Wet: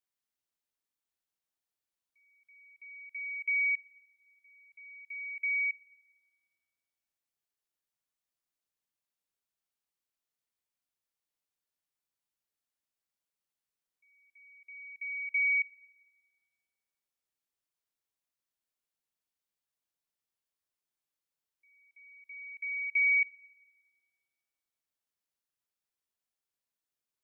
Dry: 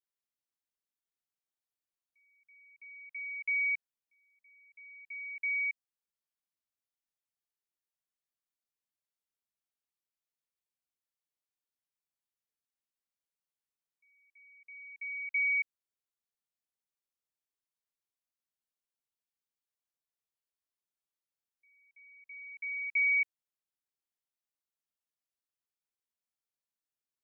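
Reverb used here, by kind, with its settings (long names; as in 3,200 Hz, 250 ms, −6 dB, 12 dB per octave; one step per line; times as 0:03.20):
feedback delay network reverb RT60 1.7 s, high-frequency decay 0.9×, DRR 19.5 dB
level +1.5 dB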